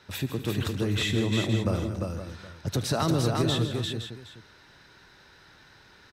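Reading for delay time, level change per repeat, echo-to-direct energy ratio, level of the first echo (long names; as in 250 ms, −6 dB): 75 ms, repeats not evenly spaced, −1.5 dB, −17.0 dB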